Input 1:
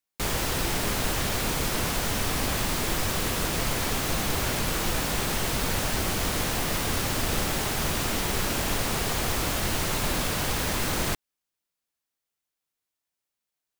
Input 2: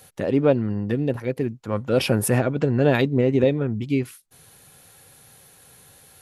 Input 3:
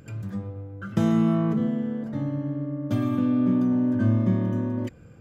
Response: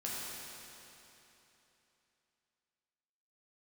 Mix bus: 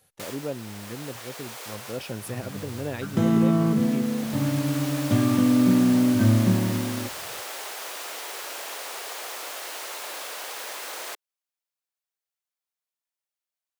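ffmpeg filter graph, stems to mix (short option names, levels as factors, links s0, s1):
-filter_complex "[0:a]highpass=f=460:w=0.5412,highpass=f=460:w=1.3066,volume=0.501[s0];[1:a]volume=0.2,asplit=2[s1][s2];[2:a]dynaudnorm=f=160:g=11:m=3.76,adelay=2200,volume=0.473[s3];[s2]apad=whole_len=608410[s4];[s0][s4]sidechaincompress=threshold=0.0178:ratio=8:attack=16:release=1400[s5];[s5][s1][s3]amix=inputs=3:normalize=0"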